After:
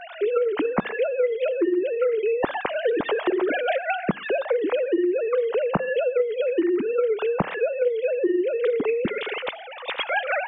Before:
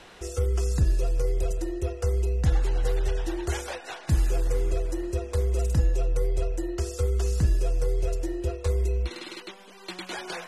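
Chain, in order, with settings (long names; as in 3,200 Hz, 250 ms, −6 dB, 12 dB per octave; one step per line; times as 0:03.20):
three sine waves on the formant tracks
downward compressor 6 to 1, threshold −27 dBFS, peak gain reduction 13.5 dB
on a send: convolution reverb, pre-delay 3 ms, DRR 23 dB
on the sum: level +7.5 dB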